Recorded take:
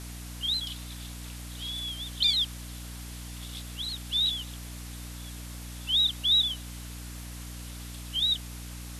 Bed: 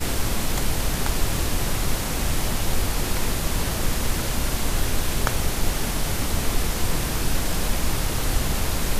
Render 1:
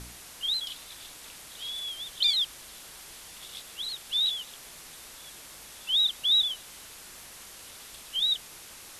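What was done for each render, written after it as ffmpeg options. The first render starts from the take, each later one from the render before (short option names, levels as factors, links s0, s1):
-af "bandreject=f=60:t=h:w=4,bandreject=f=120:t=h:w=4,bandreject=f=180:t=h:w=4,bandreject=f=240:t=h:w=4,bandreject=f=300:t=h:w=4"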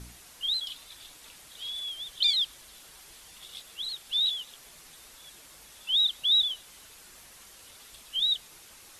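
-af "afftdn=nr=6:nf=-47"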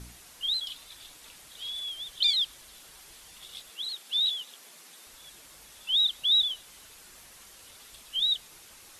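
-filter_complex "[0:a]asettb=1/sr,asplit=3[s0][s1][s2];[s0]atrim=end=3.704[s3];[s1]atrim=start=3.7:end=5.07,asetpts=PTS-STARTPTS,afade=t=in:d=0.004:c=qsin,afade=t=out:st=1.366:d=0.004:c=qsin,highpass=f=180:w=0.5412,highpass=f=180:w=1.3066[s4];[s2]atrim=start=5.066[s5];[s3][s4]acrossfade=d=0.004:c1=hsin:c2=qsin[s6];[s6][s5]acrossfade=d=0.004:c1=qsin:c2=hsin"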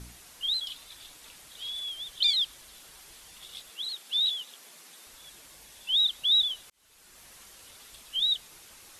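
-filter_complex "[0:a]asettb=1/sr,asplit=3[s0][s1][s2];[s0]atrim=end=5.494[s3];[s1]atrim=start=5.49:end=5.96,asetpts=PTS-STARTPTS,afade=t=in:d=0.004:c=qsin,afade=t=out:st=0.466:d=0.004:c=qsin,bandreject=f=1300:w=7[s4];[s2]atrim=start=5.956[s5];[s3][s4]acrossfade=d=0.004:c1=hsin:c2=qsin[s6];[s6][s5]acrossfade=d=0.004:c1=qsin:c2=hsin,asplit=2[s7][s8];[s7]atrim=end=6.7,asetpts=PTS-STARTPTS,afade=t=out:st=6.696:d=0.004:c=hsin[s9];[s8]atrim=start=6.7,asetpts=PTS-STARTPTS,afade=t=in:d=0.6[s10];[s9][s10]concat=n=2:v=0:a=1"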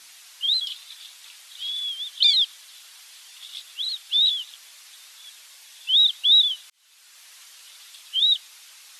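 -af "highpass=1000,equalizer=f=3900:t=o:w=2.1:g=7"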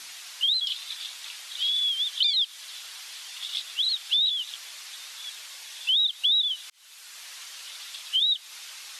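-filter_complex "[0:a]asplit=2[s0][s1];[s1]alimiter=limit=0.158:level=0:latency=1:release=224,volume=1.19[s2];[s0][s2]amix=inputs=2:normalize=0,acrossover=split=1800|7100[s3][s4][s5];[s3]acompressor=threshold=0.00355:ratio=4[s6];[s4]acompressor=threshold=0.0631:ratio=4[s7];[s5]acompressor=threshold=0.00316:ratio=4[s8];[s6][s7][s8]amix=inputs=3:normalize=0"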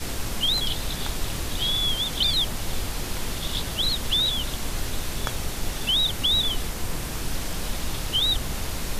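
-filter_complex "[1:a]volume=0.501[s0];[0:a][s0]amix=inputs=2:normalize=0"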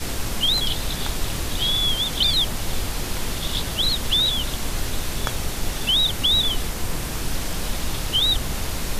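-af "volume=1.41"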